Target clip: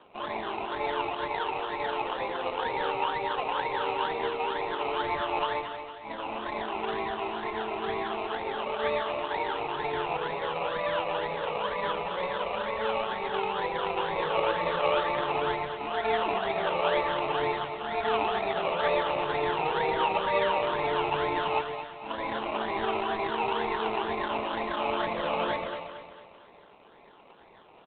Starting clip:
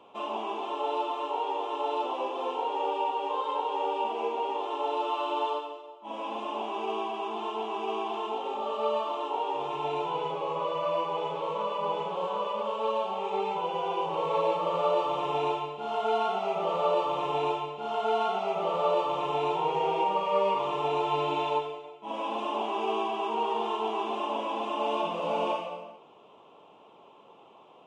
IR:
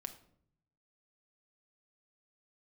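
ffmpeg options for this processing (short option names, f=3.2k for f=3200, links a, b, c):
-filter_complex "[0:a]asettb=1/sr,asplit=3[a][b][c];[a]atrim=end=1.254[d];[b]atrim=start=1.25:end=2.3,asetpts=PTS-STARTPTS,afade=t=in:d=0.004:c=qsin,afade=t=out:st=1.046:d=0.004:c=qsin,highpass=f=270:p=1[e];[c]atrim=start=2.296[f];[d][e]acrossfade=d=0.004:c1=hsin:c2=qsin[g];[g][f]acrossfade=d=0.004:c1=qsin:c2=hsin,acrusher=samples=20:mix=1:aa=0.000001:lfo=1:lforange=12:lforate=2.1,asplit=2[h][i];[i]aecho=0:1:227|454|681|908|1135:0.316|0.145|0.0669|0.0308|0.0142[j];[h][j]amix=inputs=2:normalize=0" -ar 8000 -c:a adpcm_g726 -b:a 24k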